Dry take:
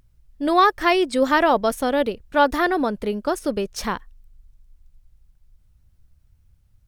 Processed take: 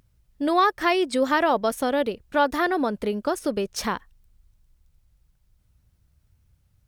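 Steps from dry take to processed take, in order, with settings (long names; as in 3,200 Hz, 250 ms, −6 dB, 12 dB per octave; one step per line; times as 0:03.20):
high-pass filter 87 Hz 6 dB per octave
in parallel at +2.5 dB: downward compressor, threshold −24 dBFS, peak gain reduction 13 dB
on the sum: level −6.5 dB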